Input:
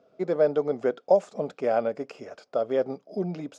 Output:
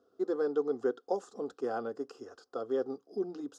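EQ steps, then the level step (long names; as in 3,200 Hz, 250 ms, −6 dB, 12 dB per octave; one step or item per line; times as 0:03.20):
parametric band 920 Hz −9.5 dB 0.21 octaves
phaser with its sweep stopped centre 610 Hz, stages 6
−2.5 dB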